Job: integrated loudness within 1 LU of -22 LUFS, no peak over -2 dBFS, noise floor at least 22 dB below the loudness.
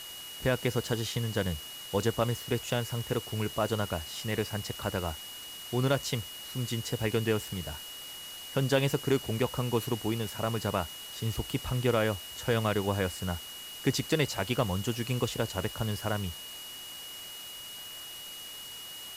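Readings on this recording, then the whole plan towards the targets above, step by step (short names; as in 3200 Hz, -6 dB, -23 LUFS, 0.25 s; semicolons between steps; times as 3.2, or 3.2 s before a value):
steady tone 2900 Hz; tone level -43 dBFS; noise floor -44 dBFS; noise floor target -54 dBFS; loudness -32.0 LUFS; peak -13.5 dBFS; loudness target -22.0 LUFS
-> notch 2900 Hz, Q 30; noise print and reduce 10 dB; gain +10 dB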